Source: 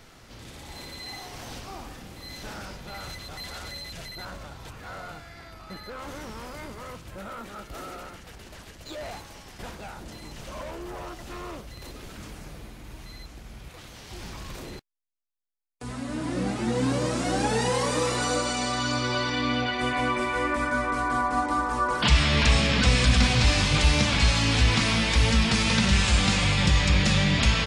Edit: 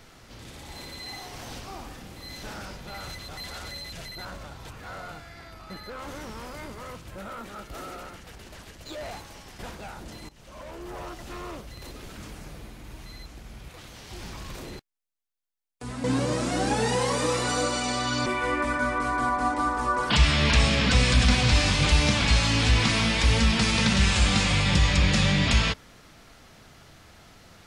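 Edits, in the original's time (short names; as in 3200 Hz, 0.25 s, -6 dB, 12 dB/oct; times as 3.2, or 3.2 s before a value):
10.29–10.99 fade in, from -17 dB
16.04–16.77 cut
18.99–20.18 cut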